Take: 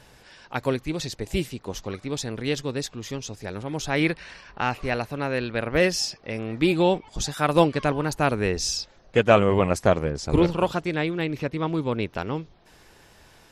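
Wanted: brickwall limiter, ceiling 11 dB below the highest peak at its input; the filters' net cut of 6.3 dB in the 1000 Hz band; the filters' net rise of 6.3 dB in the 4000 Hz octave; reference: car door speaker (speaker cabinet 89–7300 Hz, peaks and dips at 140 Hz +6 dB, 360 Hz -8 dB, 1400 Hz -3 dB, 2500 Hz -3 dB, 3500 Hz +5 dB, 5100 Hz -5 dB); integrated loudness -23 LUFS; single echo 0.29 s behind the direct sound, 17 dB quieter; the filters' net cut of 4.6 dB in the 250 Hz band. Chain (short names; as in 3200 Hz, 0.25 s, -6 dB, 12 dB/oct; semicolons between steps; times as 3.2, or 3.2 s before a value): bell 250 Hz -4.5 dB; bell 1000 Hz -8 dB; bell 4000 Hz +8 dB; limiter -17.5 dBFS; speaker cabinet 89–7300 Hz, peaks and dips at 140 Hz +6 dB, 360 Hz -8 dB, 1400 Hz -3 dB, 2500 Hz -3 dB, 3500 Hz +5 dB, 5100 Hz -5 dB; echo 0.29 s -17 dB; gain +7.5 dB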